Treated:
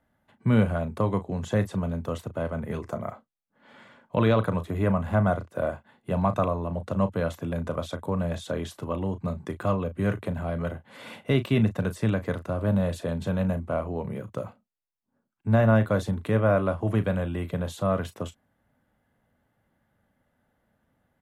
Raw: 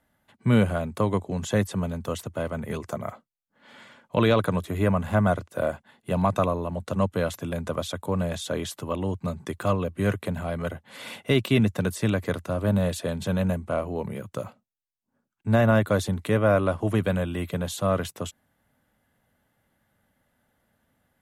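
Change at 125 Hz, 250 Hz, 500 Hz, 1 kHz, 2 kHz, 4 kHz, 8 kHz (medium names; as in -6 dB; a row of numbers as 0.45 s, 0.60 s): 0.0 dB, -1.0 dB, -1.5 dB, -1.5 dB, -3.0 dB, -6.5 dB, -9.0 dB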